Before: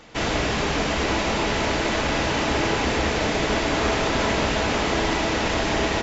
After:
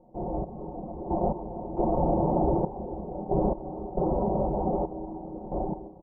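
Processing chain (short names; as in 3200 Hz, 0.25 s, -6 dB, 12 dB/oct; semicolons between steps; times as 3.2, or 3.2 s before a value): Doppler pass-by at 2.58, 11 m/s, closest 5.6 m; AGC gain up to 7 dB; reverb removal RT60 0.78 s; compressor 6:1, threshold -26 dBFS, peak gain reduction 11.5 dB; elliptic low-pass 820 Hz, stop band 50 dB; comb 5.5 ms, depth 74%; on a send at -6 dB: reverb, pre-delay 18 ms; on the sum: step gate "xx...x..xx" 68 bpm -12 dB; dynamic EQ 250 Hz, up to -4 dB, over -42 dBFS, Q 1.6; gain +6 dB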